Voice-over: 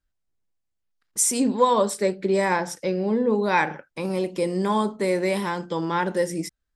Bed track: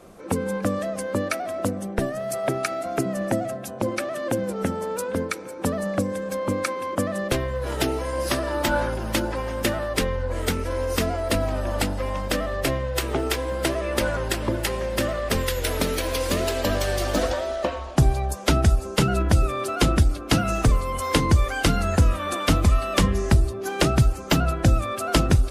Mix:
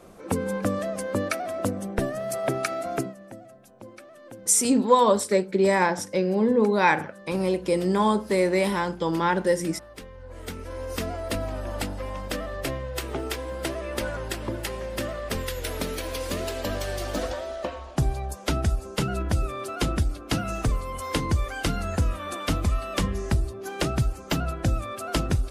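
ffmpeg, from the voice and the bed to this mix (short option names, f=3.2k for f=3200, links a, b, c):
-filter_complex "[0:a]adelay=3300,volume=1dB[a];[1:a]volume=11.5dB,afade=t=out:st=2.95:d=0.2:silence=0.133352,afade=t=in:st=10.12:d=0.98:silence=0.223872[b];[a][b]amix=inputs=2:normalize=0"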